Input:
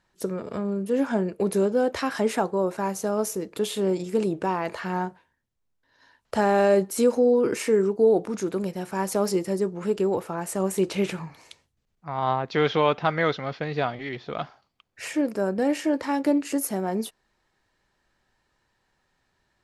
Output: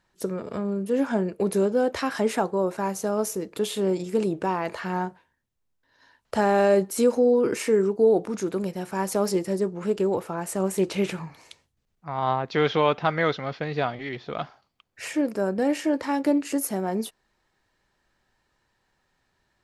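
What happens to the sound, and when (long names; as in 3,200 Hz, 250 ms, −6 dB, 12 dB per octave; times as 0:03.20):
0:09.32–0:10.93: highs frequency-modulated by the lows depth 0.1 ms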